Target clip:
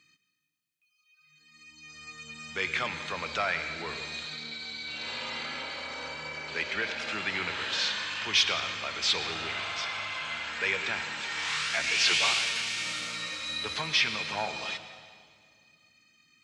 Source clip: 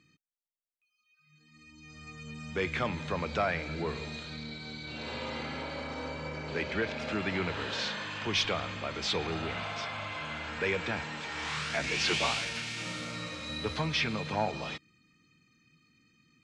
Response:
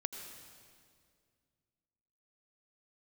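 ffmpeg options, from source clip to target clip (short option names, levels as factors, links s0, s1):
-filter_complex "[0:a]tiltshelf=f=830:g=-8.5,asplit=2[s0][s1];[1:a]atrim=start_sample=2205[s2];[s1][s2]afir=irnorm=-1:irlink=0,volume=1.41[s3];[s0][s3]amix=inputs=2:normalize=0,volume=0.376"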